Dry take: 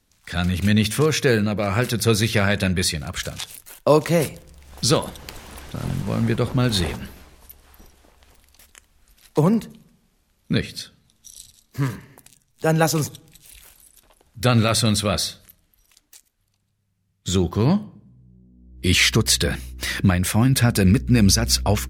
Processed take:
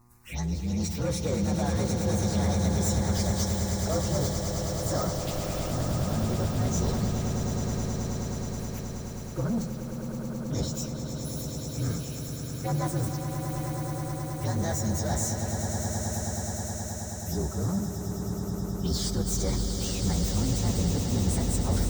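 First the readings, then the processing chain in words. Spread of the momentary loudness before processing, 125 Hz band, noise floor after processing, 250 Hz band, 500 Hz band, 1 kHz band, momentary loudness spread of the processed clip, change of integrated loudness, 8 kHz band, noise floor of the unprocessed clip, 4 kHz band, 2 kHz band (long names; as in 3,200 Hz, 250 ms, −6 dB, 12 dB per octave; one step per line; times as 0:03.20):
15 LU, −5.0 dB, −36 dBFS, −7.0 dB, −8.5 dB, −7.0 dB, 7 LU, −9.0 dB, −5.5 dB, −68 dBFS, −12.5 dB, −16.0 dB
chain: partials spread apart or drawn together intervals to 118%
reversed playback
downward compressor 6 to 1, threshold −31 dBFS, peak gain reduction 17.5 dB
reversed playback
soft clipping −30.5 dBFS, distortion −14 dB
hum with harmonics 120 Hz, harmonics 10, −66 dBFS −4 dB per octave
phaser swept by the level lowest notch 520 Hz, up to 2,700 Hz, full sweep at −34.5 dBFS
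on a send: echo that builds up and dies away 106 ms, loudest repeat 8, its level −9.5 dB
on the sum: level +7 dB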